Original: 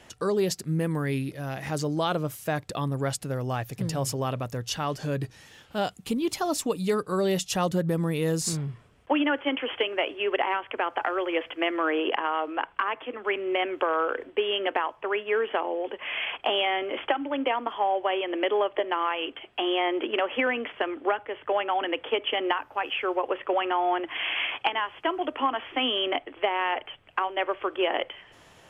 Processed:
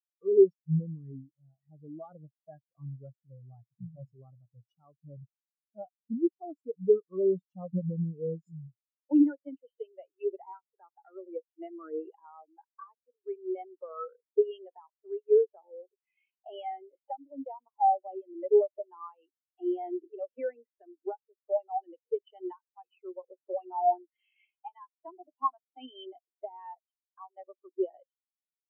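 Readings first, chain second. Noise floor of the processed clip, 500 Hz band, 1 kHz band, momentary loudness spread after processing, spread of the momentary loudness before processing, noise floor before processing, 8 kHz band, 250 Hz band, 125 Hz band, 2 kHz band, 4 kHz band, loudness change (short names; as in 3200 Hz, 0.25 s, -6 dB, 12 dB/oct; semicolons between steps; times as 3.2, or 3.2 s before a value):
under -85 dBFS, -3.0 dB, -7.5 dB, 23 LU, 6 LU, -55 dBFS, under -40 dB, -4.0 dB, -8.0 dB, under -30 dB, under -25 dB, -3.0 dB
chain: spectral expander 4:1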